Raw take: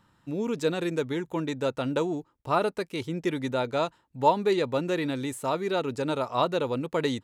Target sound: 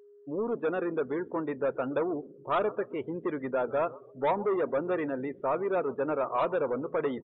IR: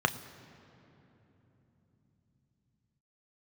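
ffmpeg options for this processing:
-filter_complex "[0:a]highpass=120,equalizer=f=170:t=q:w=4:g=-7,equalizer=f=280:t=q:w=4:g=-5,equalizer=f=860:t=q:w=4:g=-8,equalizer=f=2.3k:t=q:w=4:g=-6,lowpass=f=2.7k:w=0.5412,lowpass=f=2.7k:w=1.3066,asplit=4[a][b][c][d];[b]adelay=131,afreqshift=-88,volume=-22.5dB[e];[c]adelay=262,afreqshift=-176,volume=-29.1dB[f];[d]adelay=393,afreqshift=-264,volume=-35.6dB[g];[a][e][f][g]amix=inputs=4:normalize=0,aresample=8000,asoftclip=type=tanh:threshold=-27.5dB,aresample=44100,lowshelf=f=410:g=-6.5,asplit=2[h][i];[1:a]atrim=start_sample=2205,asetrate=41013,aresample=44100[j];[i][j]afir=irnorm=-1:irlink=0,volume=-19dB[k];[h][k]amix=inputs=2:normalize=0,afftdn=nr=27:nf=-46,aeval=exprs='val(0)+0.00141*sin(2*PI*410*n/s)':c=same,volume=4.5dB"

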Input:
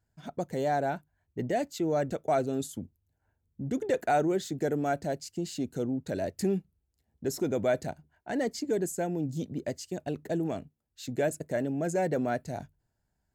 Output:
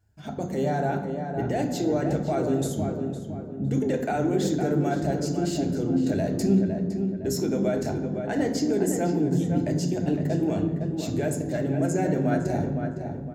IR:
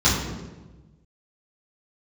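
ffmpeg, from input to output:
-filter_complex "[0:a]asettb=1/sr,asplit=3[a][b][c];[a]atrim=end=7.434[d];[b]atrim=start=7.43:end=7.85,asetpts=PTS-STARTPTS,afade=t=in:d=0.004:c=qsin,afade=t=out:st=0.416:d=0.004:c=qsin,highpass=f=160:w=0.5412,highpass=f=160:w=1.3066[e];[c]atrim=start=7.846[f];[d][e]acrossfade=d=0.004:c1=hsin:c2=qsin[g];[g][f]acrossfade=d=0.004:c1=qsin:c2=hsin,alimiter=level_in=1.5dB:limit=-24dB:level=0:latency=1:release=26,volume=-1.5dB,asplit=2[h][i];[i]adelay=510,lowpass=f=2.1k:p=1,volume=-6dB,asplit=2[j][k];[k]adelay=510,lowpass=f=2.1k:p=1,volume=0.4,asplit=2[l][m];[m]adelay=510,lowpass=f=2.1k:p=1,volume=0.4,asplit=2[n][o];[o]adelay=510,lowpass=f=2.1k:p=1,volume=0.4,asplit=2[p][q];[q]adelay=510,lowpass=f=2.1k:p=1,volume=0.4[r];[h][j][l][n][p][r]amix=inputs=6:normalize=0,asplit=2[s][t];[1:a]atrim=start_sample=2205[u];[t][u]afir=irnorm=-1:irlink=0,volume=-21dB[v];[s][v]amix=inputs=2:normalize=0,volume=4dB"

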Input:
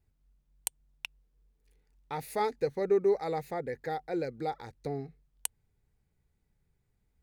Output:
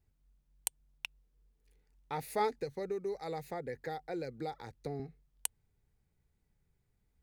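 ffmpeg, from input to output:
-filter_complex "[0:a]asettb=1/sr,asplit=3[a][b][c];[a]atrim=end=2.594[d];[b]atrim=start=2.59:end=5,asetpts=PTS-STARTPTS,afade=t=in:d=0.004:c=qsin,afade=t=out:st=2.406:d=0.004:c=qsin,acrossover=split=130|3000[e][f][g];[f]acompressor=threshold=-35dB:ratio=4[h];[e][h][g]amix=inputs=3:normalize=0[i];[c]atrim=start=4.996[j];[d][i]acrossfade=d=0.004:c1=hsin:c2=qsin[k];[k][j]acrossfade=d=0.004:c1=qsin:c2=hsin,volume=-1.5dB"

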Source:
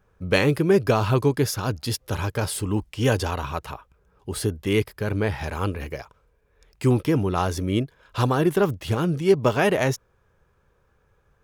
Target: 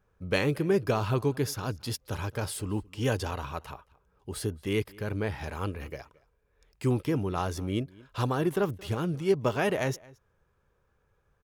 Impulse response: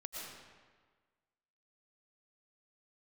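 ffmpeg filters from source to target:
-filter_complex "[0:a]asplit=2[a][b];[b]adelay=221.6,volume=-23dB,highshelf=f=4k:g=-4.99[c];[a][c]amix=inputs=2:normalize=0,volume=-7dB"

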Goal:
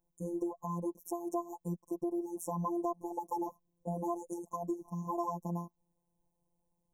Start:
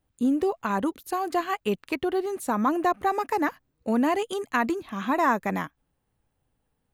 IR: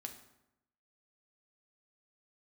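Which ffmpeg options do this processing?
-af "afftfilt=real='hypot(re,im)*cos(PI*b)':imag='0':win_size=1024:overlap=0.75,adynamicequalizer=threshold=0.00794:dfrequency=220:dqfactor=1.7:tfrequency=220:tqfactor=1.7:attack=5:release=100:ratio=0.375:range=2:mode=boostabove:tftype=bell,acompressor=threshold=-35dB:ratio=2,afftfilt=real='re*(1-between(b*sr/4096,1100,5400))':imag='im*(1-between(b*sr/4096,1100,5400))':win_size=4096:overlap=0.75,volume=-1.5dB"

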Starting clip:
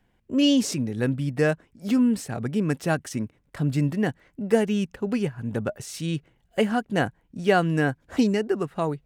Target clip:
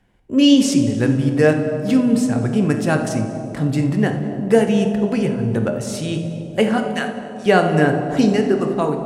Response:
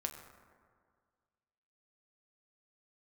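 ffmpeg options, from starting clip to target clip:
-filter_complex "[0:a]asettb=1/sr,asplit=3[a][b][c];[a]atrim=end=6.784[d];[b]atrim=start=6.78:end=7.46,asetpts=PTS-STARTPTS,afade=t=in:d=0.004:c=qsin,afade=t=out:st=0.676:d=0.004:c=qsin,highpass=1.4k[e];[c]atrim=start=7.456[f];[d][e]acrossfade=d=0.004:c1=hsin:c2=qsin[g];[g][f]acrossfade=d=0.004:c1=qsin:c2=hsin[h];[1:a]atrim=start_sample=2205,asetrate=22491,aresample=44100[i];[h][i]afir=irnorm=-1:irlink=0,volume=3dB"

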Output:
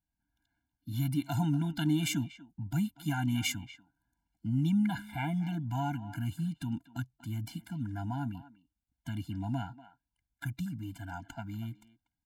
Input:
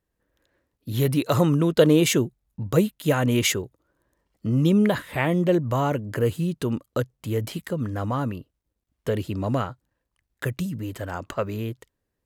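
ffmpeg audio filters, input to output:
-filter_complex "[0:a]asplit=2[a][b];[b]adelay=240,highpass=300,lowpass=3.4k,asoftclip=type=hard:threshold=-13.5dB,volume=-15dB[c];[a][c]amix=inputs=2:normalize=0,afftfilt=real='re*eq(mod(floor(b*sr/1024/340),2),0)':imag='im*eq(mod(floor(b*sr/1024/340),2),0)':win_size=1024:overlap=0.75,volume=-8dB"

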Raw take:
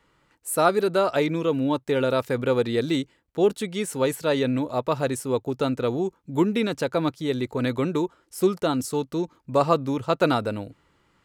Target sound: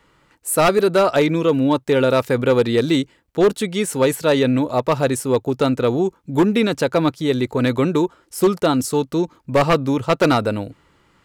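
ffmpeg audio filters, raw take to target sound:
-af "acontrast=80,aeval=exprs='0.398*(abs(mod(val(0)/0.398+3,4)-2)-1)':c=same"

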